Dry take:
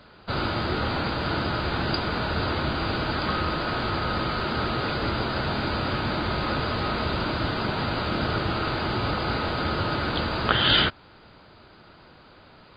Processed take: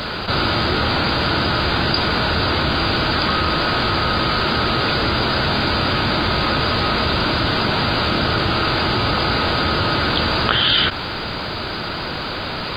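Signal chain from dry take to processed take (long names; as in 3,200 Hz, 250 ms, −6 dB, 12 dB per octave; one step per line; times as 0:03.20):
high-shelf EQ 2,600 Hz +8 dB
envelope flattener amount 70%
level −1.5 dB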